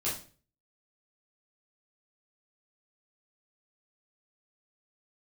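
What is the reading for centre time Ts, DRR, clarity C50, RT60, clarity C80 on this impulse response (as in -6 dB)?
33 ms, -8.5 dB, 6.0 dB, 0.40 s, 12.0 dB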